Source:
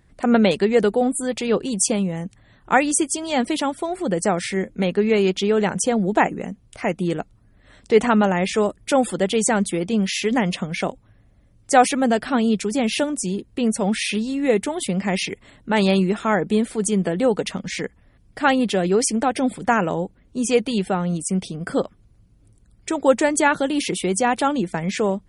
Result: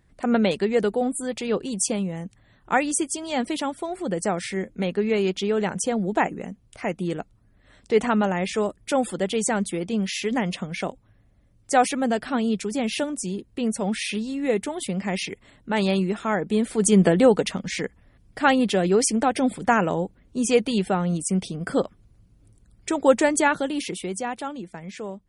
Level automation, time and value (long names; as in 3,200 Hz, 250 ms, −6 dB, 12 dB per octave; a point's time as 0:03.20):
0:16.48 −4.5 dB
0:17.04 +5.5 dB
0:17.57 −1 dB
0:23.28 −1 dB
0:24.60 −13 dB